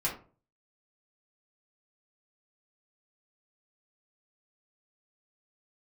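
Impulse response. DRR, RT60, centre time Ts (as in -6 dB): -6.0 dB, 0.40 s, 22 ms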